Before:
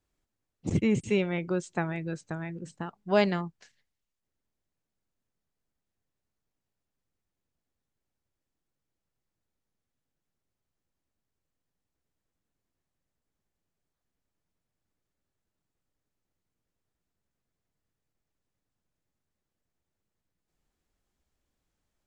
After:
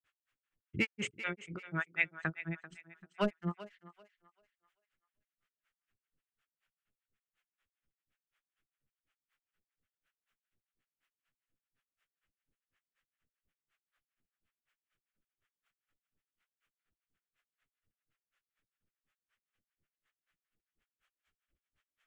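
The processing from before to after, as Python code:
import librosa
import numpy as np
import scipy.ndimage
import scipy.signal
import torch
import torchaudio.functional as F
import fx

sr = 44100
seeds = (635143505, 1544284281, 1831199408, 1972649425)

p1 = fx.band_shelf(x, sr, hz=2000.0, db=14.0, octaves=1.7)
p2 = np.clip(p1, -10.0 ** (-14.5 / 20.0), 10.0 ** (-14.5 / 20.0))
p3 = fx.level_steps(p2, sr, step_db=17)
p4 = p2 + F.gain(torch.from_numpy(p3), 0.0).numpy()
p5 = fx.hum_notches(p4, sr, base_hz=60, count=7)
p6 = fx.granulator(p5, sr, seeds[0], grain_ms=140.0, per_s=4.1, spray_ms=100.0, spread_st=0)
p7 = fx.echo_thinned(p6, sr, ms=390, feedback_pct=30, hz=450.0, wet_db=-13.5)
p8 = fx.harmonic_tremolo(p7, sr, hz=5.2, depth_pct=100, crossover_hz=530.0)
y = F.gain(torch.from_numpy(p8), -1.0).numpy()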